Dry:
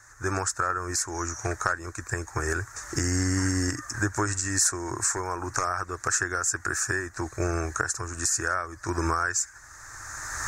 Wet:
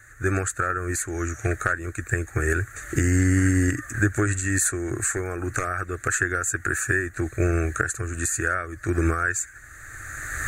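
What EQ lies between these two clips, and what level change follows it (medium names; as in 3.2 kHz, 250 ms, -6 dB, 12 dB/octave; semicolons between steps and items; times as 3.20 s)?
static phaser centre 2.3 kHz, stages 4; +7.0 dB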